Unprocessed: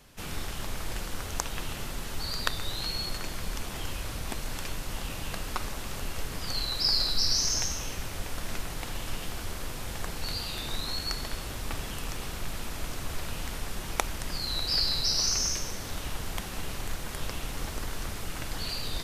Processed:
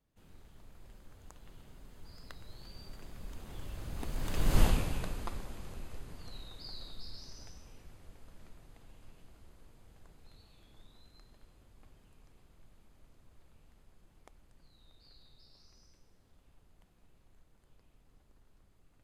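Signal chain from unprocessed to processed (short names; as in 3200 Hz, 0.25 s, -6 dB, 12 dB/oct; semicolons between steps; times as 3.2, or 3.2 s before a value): Doppler pass-by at 4.6, 23 m/s, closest 2.3 m; tilt shelf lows +5 dB, about 800 Hz; notch 5600 Hz, Q 12; gain +8 dB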